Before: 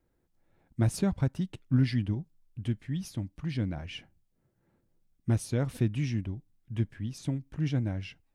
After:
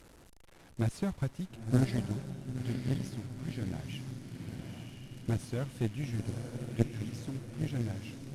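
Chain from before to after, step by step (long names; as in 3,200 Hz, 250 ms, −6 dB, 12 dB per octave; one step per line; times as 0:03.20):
linear delta modulator 64 kbit/s, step −42.5 dBFS
feedback delay with all-pass diffusion 958 ms, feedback 57%, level −4 dB
harmonic generator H 2 −13 dB, 3 −14 dB, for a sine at −14 dBFS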